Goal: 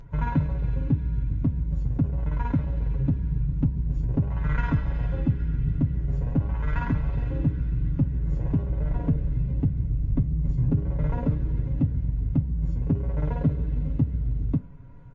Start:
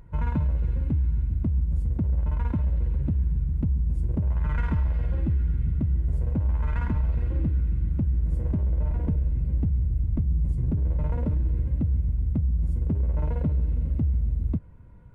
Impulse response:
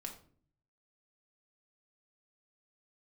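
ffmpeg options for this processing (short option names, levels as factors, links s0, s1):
-filter_complex "[0:a]aecho=1:1:7.2:0.73,asplit=2[s0][s1];[1:a]atrim=start_sample=2205[s2];[s1][s2]afir=irnorm=-1:irlink=0,volume=0.237[s3];[s0][s3]amix=inputs=2:normalize=0,volume=1.19" -ar 16000 -c:a libmp3lame -b:a 32k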